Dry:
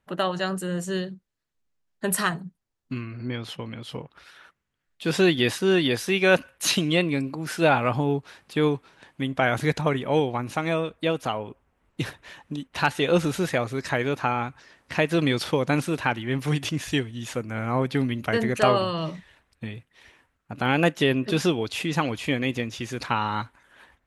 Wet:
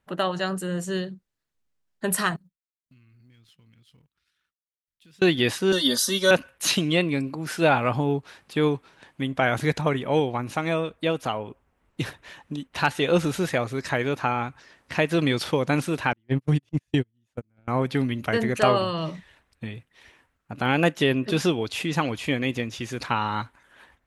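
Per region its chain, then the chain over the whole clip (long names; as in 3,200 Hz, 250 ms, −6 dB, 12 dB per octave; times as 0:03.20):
0:02.36–0:05.22: mu-law and A-law mismatch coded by A + guitar amp tone stack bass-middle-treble 6-0-2 + downward compressor 4 to 1, threshold −53 dBFS
0:05.72–0:06.31: high shelf with overshoot 2,500 Hz +9.5 dB, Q 1.5 + phaser with its sweep stopped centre 500 Hz, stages 8 + comb filter 3.3 ms, depth 96%
0:16.13–0:17.68: noise gate −25 dBFS, range −44 dB + low-shelf EQ 380 Hz +11.5 dB + downward compressor, threshold −16 dBFS
whole clip: no processing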